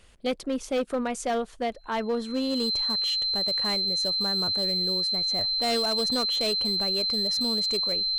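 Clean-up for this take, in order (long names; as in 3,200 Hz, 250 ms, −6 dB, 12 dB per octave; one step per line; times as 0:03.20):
clipped peaks rebuilt −21.5 dBFS
notch filter 4,100 Hz, Q 30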